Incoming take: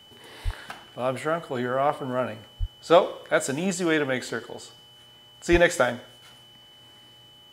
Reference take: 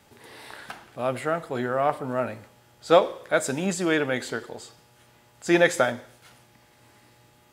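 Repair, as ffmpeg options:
-filter_complex "[0:a]bandreject=f=3k:w=30,asplit=3[a][b][c];[a]afade=t=out:st=0.44:d=0.02[d];[b]highpass=f=140:w=0.5412,highpass=f=140:w=1.3066,afade=t=in:st=0.44:d=0.02,afade=t=out:st=0.56:d=0.02[e];[c]afade=t=in:st=0.56:d=0.02[f];[d][e][f]amix=inputs=3:normalize=0,asplit=3[g][h][i];[g]afade=t=out:st=2.59:d=0.02[j];[h]highpass=f=140:w=0.5412,highpass=f=140:w=1.3066,afade=t=in:st=2.59:d=0.02,afade=t=out:st=2.71:d=0.02[k];[i]afade=t=in:st=2.71:d=0.02[l];[j][k][l]amix=inputs=3:normalize=0,asplit=3[m][n][o];[m]afade=t=out:st=5.51:d=0.02[p];[n]highpass=f=140:w=0.5412,highpass=f=140:w=1.3066,afade=t=in:st=5.51:d=0.02,afade=t=out:st=5.63:d=0.02[q];[o]afade=t=in:st=5.63:d=0.02[r];[p][q][r]amix=inputs=3:normalize=0"

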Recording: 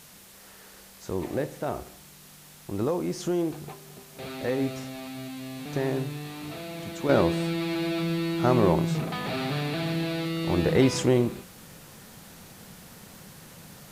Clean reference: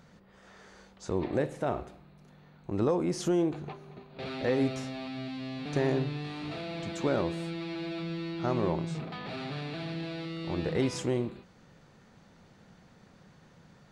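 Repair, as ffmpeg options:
-af "afwtdn=0.0032,asetnsamples=n=441:p=0,asendcmd='7.09 volume volume -8dB',volume=0dB"

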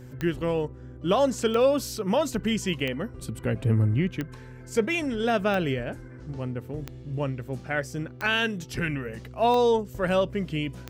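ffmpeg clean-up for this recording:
-af "adeclick=t=4,bandreject=f=125.5:t=h:w=4,bandreject=f=251:t=h:w=4,bandreject=f=376.5:t=h:w=4,bandreject=f=502:t=h:w=4"

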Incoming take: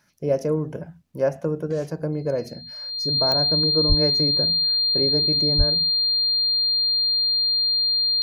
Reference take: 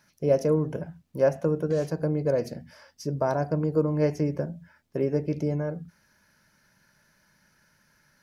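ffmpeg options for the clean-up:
-filter_complex "[0:a]adeclick=t=4,bandreject=f=4.2k:w=30,asplit=3[a][b][c];[a]afade=t=out:st=3.88:d=0.02[d];[b]highpass=f=140:w=0.5412,highpass=f=140:w=1.3066,afade=t=in:st=3.88:d=0.02,afade=t=out:st=4:d=0.02[e];[c]afade=t=in:st=4:d=0.02[f];[d][e][f]amix=inputs=3:normalize=0,asplit=3[g][h][i];[g]afade=t=out:st=5.57:d=0.02[j];[h]highpass=f=140:w=0.5412,highpass=f=140:w=1.3066,afade=t=in:st=5.57:d=0.02,afade=t=out:st=5.69:d=0.02[k];[i]afade=t=in:st=5.69:d=0.02[l];[j][k][l]amix=inputs=3:normalize=0"

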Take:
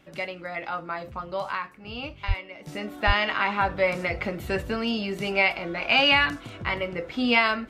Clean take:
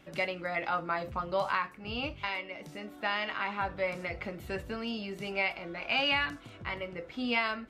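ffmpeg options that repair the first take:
-filter_complex "[0:a]asplit=3[a][b][c];[a]afade=t=out:st=2.27:d=0.02[d];[b]highpass=f=140:w=0.5412,highpass=f=140:w=1.3066,afade=t=in:st=2.27:d=0.02,afade=t=out:st=2.39:d=0.02[e];[c]afade=t=in:st=2.39:d=0.02[f];[d][e][f]amix=inputs=3:normalize=0,asplit=3[g][h][i];[g]afade=t=out:st=3.06:d=0.02[j];[h]highpass=f=140:w=0.5412,highpass=f=140:w=1.3066,afade=t=in:st=3.06:d=0.02,afade=t=out:st=3.18:d=0.02[k];[i]afade=t=in:st=3.18:d=0.02[l];[j][k][l]amix=inputs=3:normalize=0,asetnsamples=n=441:p=0,asendcmd='2.67 volume volume -9dB',volume=0dB"

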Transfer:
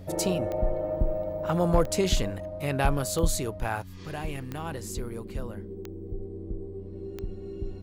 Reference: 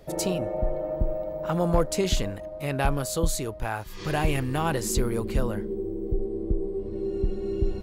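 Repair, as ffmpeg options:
-af "adeclick=t=4,bandreject=f=92.4:t=h:w=4,bandreject=f=184.8:t=h:w=4,bandreject=f=277.2:t=h:w=4,asetnsamples=n=441:p=0,asendcmd='3.82 volume volume 9.5dB',volume=0dB"

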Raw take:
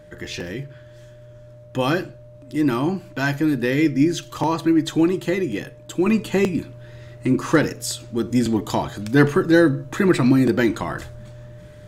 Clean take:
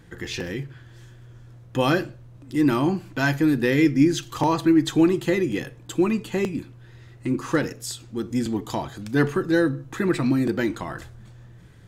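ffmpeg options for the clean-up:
-af "bandreject=f=600:w=30,asetnsamples=n=441:p=0,asendcmd='6.06 volume volume -5.5dB',volume=0dB"

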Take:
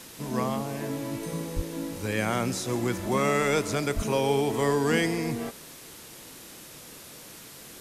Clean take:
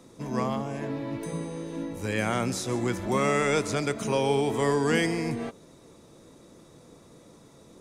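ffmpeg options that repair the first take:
-filter_complex "[0:a]asplit=3[a][b][c];[a]afade=t=out:st=1.55:d=0.02[d];[b]highpass=f=140:w=0.5412,highpass=f=140:w=1.3066,afade=t=in:st=1.55:d=0.02,afade=t=out:st=1.67:d=0.02[e];[c]afade=t=in:st=1.67:d=0.02[f];[d][e][f]amix=inputs=3:normalize=0,asplit=3[g][h][i];[g]afade=t=out:st=3.95:d=0.02[j];[h]highpass=f=140:w=0.5412,highpass=f=140:w=1.3066,afade=t=in:st=3.95:d=0.02,afade=t=out:st=4.07:d=0.02[k];[i]afade=t=in:st=4.07:d=0.02[l];[j][k][l]amix=inputs=3:normalize=0,afwtdn=0.0056"

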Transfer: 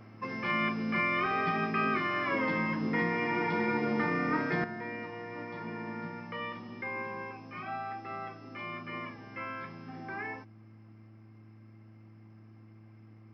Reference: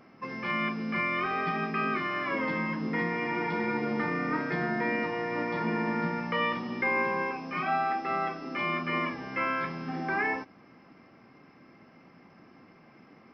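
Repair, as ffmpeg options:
-af "bandreject=f=109.2:t=h:w=4,bandreject=f=218.4:t=h:w=4,bandreject=f=327.6:t=h:w=4,asetnsamples=n=441:p=0,asendcmd='4.64 volume volume 10dB',volume=0dB"

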